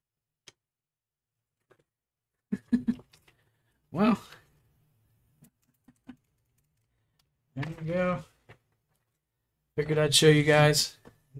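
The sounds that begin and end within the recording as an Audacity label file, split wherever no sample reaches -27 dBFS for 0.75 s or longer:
2.530000	2.910000	sound
3.960000	4.140000	sound
7.590000	8.160000	sound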